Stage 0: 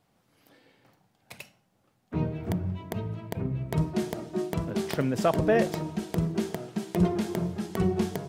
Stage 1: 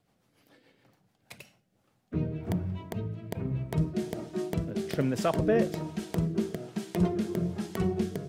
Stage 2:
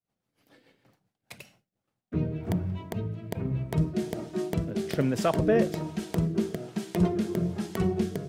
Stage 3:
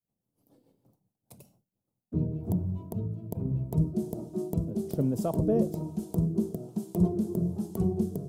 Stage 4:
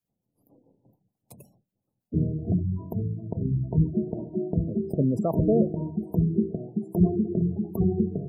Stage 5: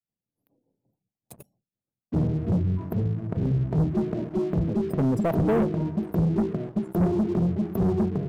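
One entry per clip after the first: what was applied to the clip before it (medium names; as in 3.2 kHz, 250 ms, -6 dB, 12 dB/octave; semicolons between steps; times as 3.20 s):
rotary cabinet horn 7 Hz, later 1.2 Hz, at 0.97 s
expander -60 dBFS; trim +2 dB
FFT filter 220 Hz 0 dB, 980 Hz -8 dB, 1.8 kHz -28 dB, 12 kHz +1 dB
spectral gate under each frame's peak -25 dB strong; trim +4 dB
waveshaping leveller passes 3; trim -6.5 dB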